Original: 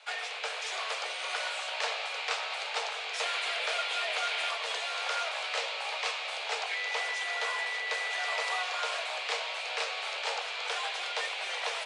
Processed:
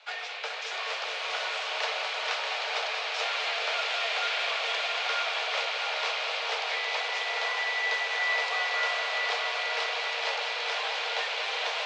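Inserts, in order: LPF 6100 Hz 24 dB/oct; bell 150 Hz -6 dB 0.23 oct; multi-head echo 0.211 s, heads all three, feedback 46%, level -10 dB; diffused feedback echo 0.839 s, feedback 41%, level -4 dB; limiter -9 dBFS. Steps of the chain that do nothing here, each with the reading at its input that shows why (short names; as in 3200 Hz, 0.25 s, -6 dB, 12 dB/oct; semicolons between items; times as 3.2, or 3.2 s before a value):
bell 150 Hz: input band starts at 340 Hz; limiter -9 dBFS: input peak -15.5 dBFS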